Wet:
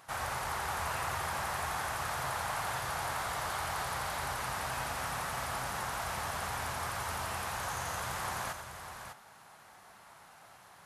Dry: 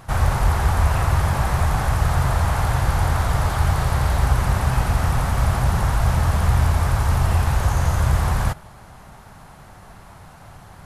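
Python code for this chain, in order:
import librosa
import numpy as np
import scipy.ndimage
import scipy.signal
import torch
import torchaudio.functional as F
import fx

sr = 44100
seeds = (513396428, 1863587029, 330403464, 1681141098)

p1 = fx.highpass(x, sr, hz=950.0, slope=6)
p2 = p1 + fx.echo_multitap(p1, sr, ms=(91, 601), db=(-9.0, -8.0), dry=0)
y = p2 * 10.0 ** (-7.5 / 20.0)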